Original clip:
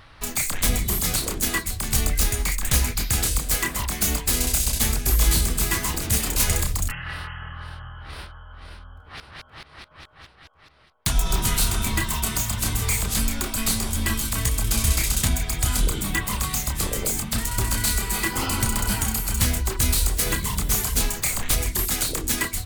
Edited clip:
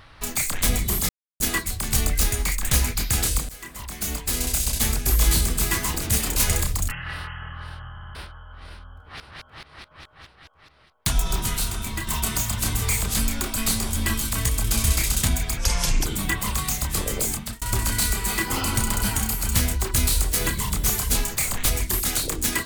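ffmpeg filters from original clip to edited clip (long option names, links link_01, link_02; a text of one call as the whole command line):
ffmpeg -i in.wav -filter_complex "[0:a]asplit=12[link_01][link_02][link_03][link_04][link_05][link_06][link_07][link_08][link_09][link_10][link_11][link_12];[link_01]atrim=end=1.09,asetpts=PTS-STARTPTS,afade=type=out:start_time=1.086:duration=0.004:curve=hsin[link_13];[link_02]atrim=start=1.09:end=1.4,asetpts=PTS-STARTPTS,volume=0[link_14];[link_03]atrim=start=1.4:end=3.49,asetpts=PTS-STARTPTS,afade=type=in:duration=0.004:curve=hsin,afade=type=out:start_time=2.086:duration=0.004:curve=hsin:silence=0.0841395[link_15];[link_04]atrim=start=3.49:end=7.972,asetpts=PTS-STARTPTS,afade=type=in:duration=1.79:curve=qsin:silence=0.0841395[link_16];[link_05]atrim=start=7.908:end=7.972[link_17];[link_06]atrim=start=7.908:end=7.972[link_18];[link_07]atrim=start=7.908:end=7.972[link_19];[link_08]atrim=start=8.148:end=12.07,asetpts=PTS-STARTPTS,afade=type=out:start_time=2.952:duration=0.97:curve=qua:silence=0.501187[link_20];[link_09]atrim=start=12.07:end=15.574,asetpts=PTS-STARTPTS,afade=type=in:duration=0.004:curve=hsin:silence=0.501187[link_21];[link_10]atrim=start=15.57:end=15.91,asetpts=PTS-STARTPTS,asetrate=30870,aresample=44100[link_22];[link_11]atrim=start=15.906:end=17.47,asetpts=PTS-STARTPTS,afade=type=out:start_time=1.274:duration=0.29[link_23];[link_12]atrim=start=17.47,asetpts=PTS-STARTPTS,afade=type=in:duration=0.004:curve=hsin[link_24];[link_13][link_14][link_15][link_16]concat=n=4:v=0:a=1[link_25];[link_25][link_17]acrossfade=duration=0.004:curve1=hsin:curve2=hsin[link_26];[link_26][link_18]acrossfade=duration=0.004:curve1=hsin:curve2=hsin[link_27];[link_27][link_19]acrossfade=duration=0.004:curve1=hsin:curve2=hsin[link_28];[link_20][link_21]concat=n=2:v=0:a=1[link_29];[link_28][link_29]acrossfade=duration=0.004:curve1=hsin:curve2=hsin[link_30];[link_30][link_22]acrossfade=duration=0.004:curve1=hsin:curve2=hsin[link_31];[link_23][link_24]concat=n=2:v=0:a=1[link_32];[link_31][link_32]acrossfade=duration=0.004:curve1=hsin:curve2=hsin" out.wav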